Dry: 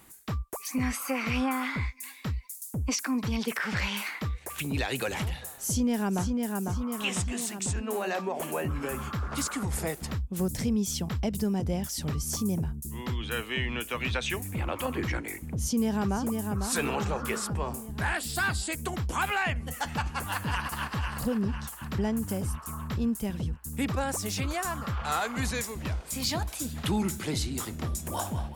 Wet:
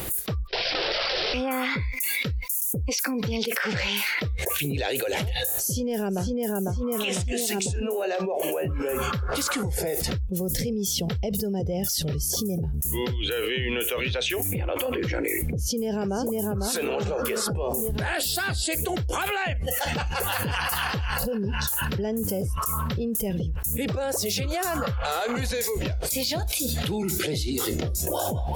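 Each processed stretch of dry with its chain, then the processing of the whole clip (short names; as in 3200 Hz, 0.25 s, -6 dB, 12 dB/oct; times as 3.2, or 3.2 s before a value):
0.47–1.34 wrapped overs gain 29 dB + careless resampling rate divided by 4×, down none, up filtered
whole clip: spectral noise reduction 13 dB; graphic EQ 250/500/1000/2000/8000 Hz -10/+7/-11/-5/-9 dB; fast leveller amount 100%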